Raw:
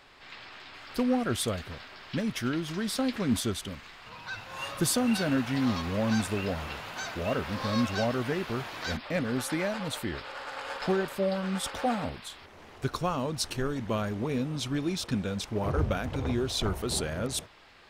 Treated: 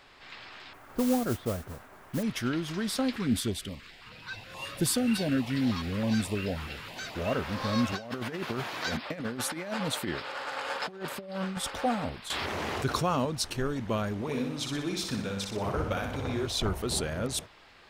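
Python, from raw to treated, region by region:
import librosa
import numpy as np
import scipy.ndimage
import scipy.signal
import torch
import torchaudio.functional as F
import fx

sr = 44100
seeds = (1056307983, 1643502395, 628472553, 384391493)

y = fx.chain(x, sr, fx.lowpass(hz=1200.0, slope=12),
    fx.mod_noise(seeds[0], snr_db=14), at=(0.73, 2.23))
y = fx.chain(y, sr, fx.peak_eq(hz=6300.0, db=-5.0, octaves=0.24),
    fx.filter_held_notch(hz=9.4, low_hz=610.0, high_hz=1500.0), at=(3.16, 7.15))
y = fx.chain(y, sr, fx.highpass(hz=120.0, slope=12),
    fx.over_compress(threshold_db=-33.0, ratio=-0.5), at=(7.92, 11.57))
y = fx.chain(y, sr, fx.highpass(hz=65.0, slope=12),
    fx.env_flatten(amount_pct=70), at=(12.3, 13.25))
y = fx.chain(y, sr, fx.low_shelf(hz=330.0, db=-6.5),
    fx.echo_feedback(ms=61, feedback_pct=52, wet_db=-5), at=(14.21, 16.47))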